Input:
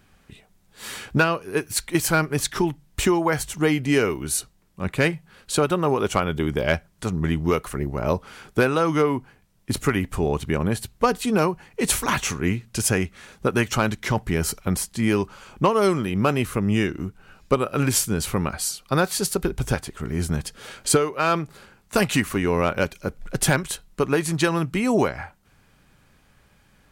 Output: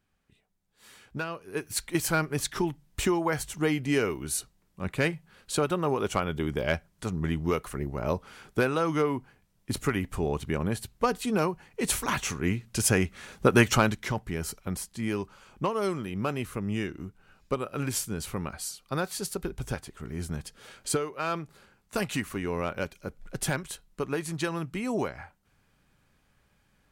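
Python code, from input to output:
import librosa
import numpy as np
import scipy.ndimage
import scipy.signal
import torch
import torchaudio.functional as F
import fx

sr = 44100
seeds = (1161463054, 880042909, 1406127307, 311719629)

y = fx.gain(x, sr, db=fx.line((0.99, -18.5), (1.74, -6.0), (12.23, -6.0), (13.67, 2.0), (14.22, -9.5)))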